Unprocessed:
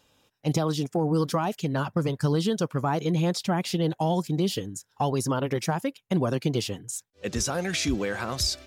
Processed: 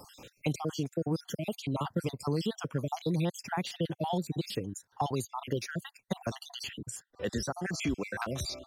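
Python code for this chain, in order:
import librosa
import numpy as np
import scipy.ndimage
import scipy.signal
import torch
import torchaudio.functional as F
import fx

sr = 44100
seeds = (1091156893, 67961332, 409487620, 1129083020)

y = fx.spec_dropout(x, sr, seeds[0], share_pct=52)
y = fx.band_squash(y, sr, depth_pct=70)
y = y * librosa.db_to_amplitude(-4.5)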